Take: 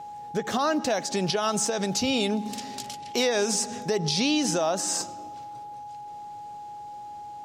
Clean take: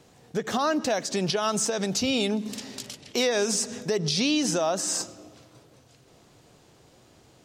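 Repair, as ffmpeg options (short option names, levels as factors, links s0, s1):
-af "bandreject=f=830:w=30"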